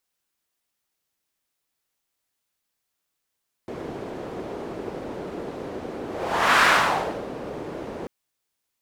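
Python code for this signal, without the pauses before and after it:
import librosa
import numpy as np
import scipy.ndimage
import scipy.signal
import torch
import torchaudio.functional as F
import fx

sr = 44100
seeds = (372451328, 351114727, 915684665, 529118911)

y = fx.whoosh(sr, seeds[0], length_s=4.39, peak_s=2.95, rise_s=0.61, fall_s=0.68, ends_hz=410.0, peak_hz=1500.0, q=1.5, swell_db=17.0)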